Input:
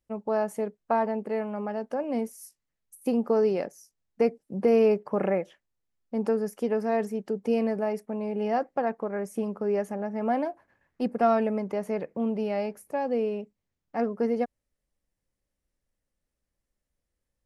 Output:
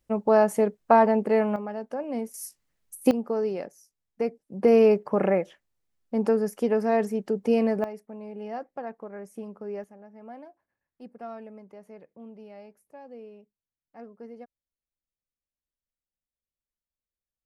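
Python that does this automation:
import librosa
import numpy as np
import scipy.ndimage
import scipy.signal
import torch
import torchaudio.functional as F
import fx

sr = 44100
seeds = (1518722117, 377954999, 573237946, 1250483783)

y = fx.gain(x, sr, db=fx.steps((0.0, 7.5), (1.56, -2.0), (2.34, 8.0), (3.11, -4.0), (4.63, 3.0), (7.84, -8.5), (9.84, -17.0)))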